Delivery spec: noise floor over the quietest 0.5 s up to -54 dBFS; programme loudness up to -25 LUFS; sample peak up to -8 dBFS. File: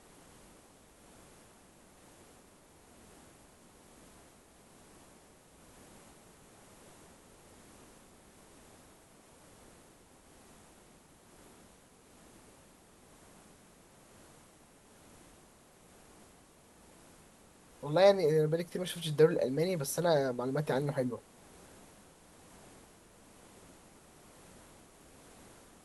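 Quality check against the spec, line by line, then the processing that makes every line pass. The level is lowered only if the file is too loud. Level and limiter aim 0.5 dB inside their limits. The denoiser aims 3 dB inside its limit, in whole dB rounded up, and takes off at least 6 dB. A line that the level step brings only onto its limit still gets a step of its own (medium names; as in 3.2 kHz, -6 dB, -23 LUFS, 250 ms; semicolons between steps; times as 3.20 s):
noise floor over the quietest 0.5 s -60 dBFS: pass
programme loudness -30.5 LUFS: pass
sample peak -12.0 dBFS: pass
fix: none needed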